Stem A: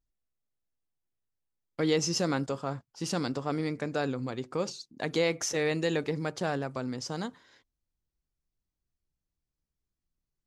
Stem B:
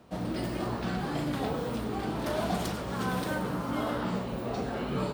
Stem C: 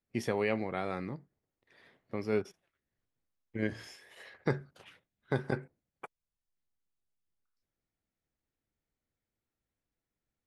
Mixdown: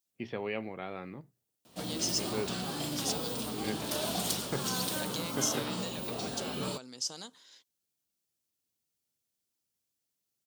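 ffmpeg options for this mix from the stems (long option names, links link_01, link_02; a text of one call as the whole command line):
ffmpeg -i stem1.wav -i stem2.wav -i stem3.wav -filter_complex "[0:a]acompressor=threshold=-37dB:ratio=4,highpass=frequency=340:poles=1,volume=-5dB[link_01];[1:a]adelay=1650,volume=-5.5dB[link_02];[2:a]lowpass=frequency=2800:width=0.5412,lowpass=frequency=2800:width=1.3066,bandreject=frequency=60:width_type=h:width=6,bandreject=frequency=120:width_type=h:width=6,adelay=50,volume=-5dB[link_03];[link_01][link_02][link_03]amix=inputs=3:normalize=0,highpass=95,aexciter=amount=4.9:drive=3.6:freq=2800" out.wav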